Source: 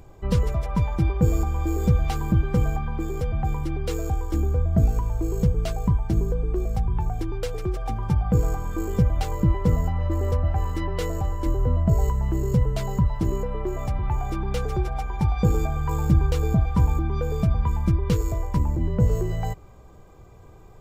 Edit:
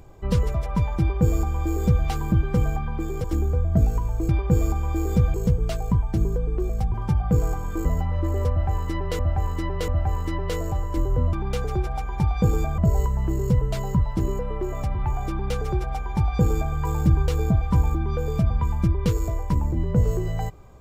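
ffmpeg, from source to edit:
-filter_complex "[0:a]asplit=10[a][b][c][d][e][f][g][h][i][j];[a]atrim=end=3.242[k];[b]atrim=start=4.248:end=5.302[l];[c]atrim=start=0.998:end=2.052[m];[d]atrim=start=5.298:end=6.902[n];[e]atrim=start=7.948:end=8.862[o];[f]atrim=start=9.718:end=11.062[p];[g]atrim=start=10.368:end=11.062[q];[h]atrim=start=10.368:end=11.822[r];[i]atrim=start=14.338:end=15.792[s];[j]atrim=start=11.818[t];[k][l]acrossfade=d=0.004:c1=hsin:c2=hsin[u];[u][m]acrossfade=d=0.004:c1=hsin:c2=hsin[v];[v][n]acrossfade=d=0.004:c1=hsin:c2=hsin[w];[w][o]acrossfade=d=0.004:c1=hsin:c2=hsin[x];[x][p]acrossfade=d=0.004:c1=hsin:c2=hsin[y];[y][q]acrossfade=d=0.004:c1=hsin:c2=hsin[z];[z][r]acrossfade=d=0.004:c1=hsin:c2=hsin[aa];[aa][s]acrossfade=d=0.004:c1=hsin:c2=hsin[ab];[ab][t]acrossfade=d=0.004:c1=hsin:c2=hsin"

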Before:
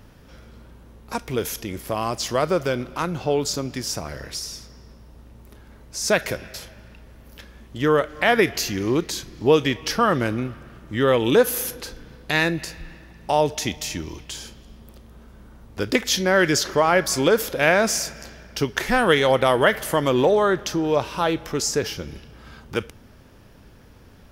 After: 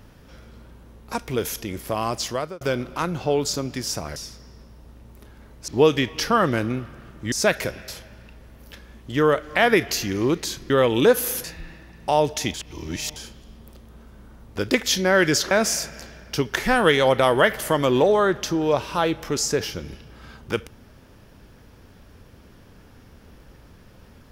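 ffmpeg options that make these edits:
-filter_complex "[0:a]asplit=10[a][b][c][d][e][f][g][h][i][j];[a]atrim=end=2.61,asetpts=PTS-STARTPTS,afade=t=out:st=2.2:d=0.41[k];[b]atrim=start=2.61:end=4.162,asetpts=PTS-STARTPTS,afade=t=in:d=0.004:c=hsin[l];[c]atrim=start=4.458:end=5.982[m];[d]atrim=start=9.358:end=11.002[n];[e]atrim=start=5.978:end=9.362[o];[f]atrim=start=10.998:end=11.742[p];[g]atrim=start=12.648:end=13.752[q];[h]atrim=start=13.748:end=14.372,asetpts=PTS-STARTPTS,areverse[r];[i]atrim=start=14.368:end=16.722[s];[j]atrim=start=17.738[t];[k][l]concat=n=2:v=0:a=1[u];[u][m]acrossfade=d=0.004:c1=hsin:c2=hsin[v];[v][n]acrossfade=d=0.004:c1=hsin:c2=hsin[w];[w][o]acrossfade=d=0.004:c1=hsin:c2=hsin[x];[x][p]acrossfade=d=0.004:c1=hsin:c2=hsin[y];[y][q]acrossfade=d=0.004:c1=hsin:c2=hsin[z];[z][r]acrossfade=d=0.004:c1=hsin:c2=hsin[aa];[aa][s]acrossfade=d=0.004:c1=hsin:c2=hsin[ab];[ab][t]acrossfade=d=0.004:c1=hsin:c2=hsin"

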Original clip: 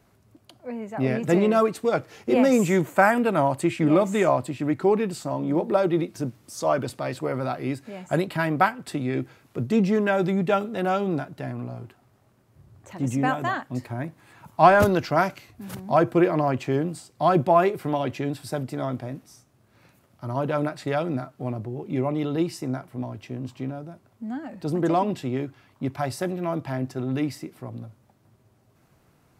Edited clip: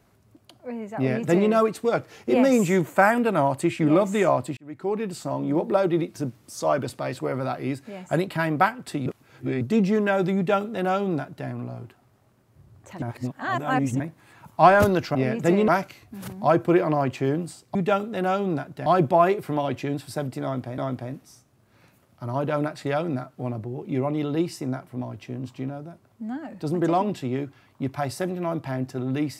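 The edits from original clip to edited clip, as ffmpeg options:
-filter_complex "[0:a]asplit=11[a][b][c][d][e][f][g][h][i][j][k];[a]atrim=end=4.57,asetpts=PTS-STARTPTS,afade=t=out:st=4.566:d=0.004:c=hsin[l];[b]atrim=start=4.57:end=9.062,asetpts=PTS-STARTPTS,afade=t=in:d=0.68[m];[c]atrim=start=9.058:end=9.612,asetpts=PTS-STARTPTS,areverse[n];[d]atrim=start=9.608:end=13.022[o];[e]atrim=start=13.018:end=14.002,asetpts=PTS-STARTPTS,areverse[p];[f]atrim=start=13.998:end=15.152[q];[g]atrim=start=0.988:end=1.522[r];[h]atrim=start=15.148:end=17.222[s];[i]atrim=start=10.358:end=11.472[t];[j]atrim=start=17.218:end=19.142[u];[k]atrim=start=18.788[v];[l][m]concat=n=2:v=0:a=1[w];[w][n]acrossfade=d=0.004:c1=hsin:c2=hsin[x];[x][o]acrossfade=d=0.004:c1=hsin:c2=hsin[y];[y][p]acrossfade=d=0.004:c1=hsin:c2=hsin[z];[z][q]acrossfade=d=0.004:c1=hsin:c2=hsin[aa];[aa][r]acrossfade=d=0.004:c1=hsin:c2=hsin[ab];[ab][s]acrossfade=d=0.004:c1=hsin:c2=hsin[ac];[ac][t]acrossfade=d=0.004:c1=hsin:c2=hsin[ad];[ad][u]acrossfade=d=0.004:c1=hsin:c2=hsin[ae];[ae][v]acrossfade=d=0.004:c1=hsin:c2=hsin"

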